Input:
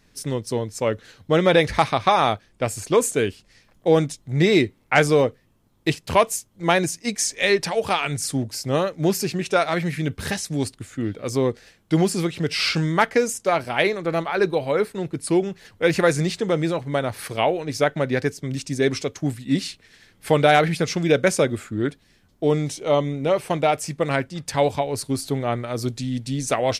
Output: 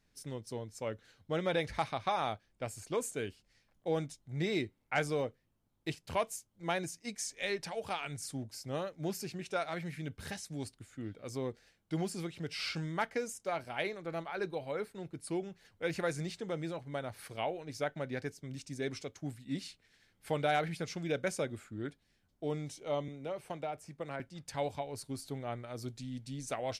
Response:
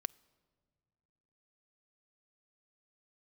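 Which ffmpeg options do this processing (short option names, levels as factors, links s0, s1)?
-filter_complex "[0:a]asettb=1/sr,asplit=3[s0][s1][s2];[s0]atrim=end=23.084[s3];[s1]atrim=start=23.08:end=24.2,asetpts=PTS-STARTPTS,afade=t=in:d=0.004:c=qsin,afade=t=out:st=1.116:d=0.004:c=qsin,acrossover=split=300|1800[s4][s5][s6];[s4]acompressor=threshold=0.0251:ratio=4[s7];[s5]acompressor=threshold=0.0891:ratio=4[s8];[s6]acompressor=threshold=0.01:ratio=4[s9];[s7][s8][s9]amix=inputs=3:normalize=0[s10];[s2]atrim=start=24.196[s11];[s3][s10]acrossfade=d=0.004:c1=hsin:c2=qsin[s12];[s12][s11]acrossfade=d=0.004:c1=qsin:c2=hsin[s13];[1:a]atrim=start_sample=2205,atrim=end_sample=3087,asetrate=83790,aresample=44100[s14];[s13][s14]afir=irnorm=-1:irlink=0,volume=0.376"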